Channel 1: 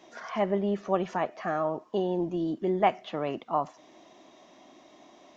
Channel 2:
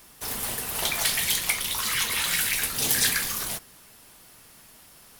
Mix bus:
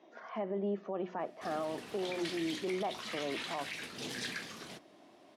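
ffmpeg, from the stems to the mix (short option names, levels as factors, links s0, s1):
-filter_complex "[0:a]bandreject=f=60:t=h:w=6,bandreject=f=120:t=h:w=6,bandreject=f=180:t=h:w=6,bandreject=f=240:t=h:w=6,bandreject=f=300:t=h:w=6,bandreject=f=360:t=h:w=6,volume=0.531[s0];[1:a]equalizer=f=880:w=0.63:g=-6,adelay=1200,volume=0.531[s1];[s0][s1]amix=inputs=2:normalize=0,highpass=250,lowpass=4000,tiltshelf=f=640:g=5,alimiter=level_in=1.5:limit=0.0631:level=0:latency=1:release=35,volume=0.668"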